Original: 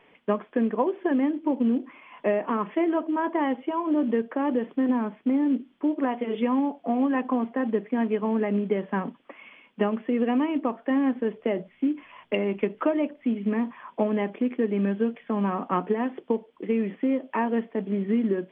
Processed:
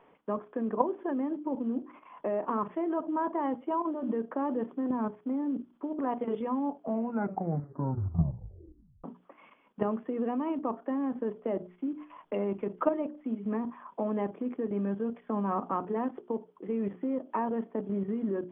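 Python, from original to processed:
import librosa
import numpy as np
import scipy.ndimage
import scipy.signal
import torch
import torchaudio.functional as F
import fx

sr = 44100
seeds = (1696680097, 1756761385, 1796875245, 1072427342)

y = fx.edit(x, sr, fx.tape_stop(start_s=6.77, length_s=2.27), tone=tone)
y = fx.level_steps(y, sr, step_db=10)
y = fx.high_shelf_res(y, sr, hz=1600.0, db=-8.5, q=1.5)
y = fx.hum_notches(y, sr, base_hz=60, count=7)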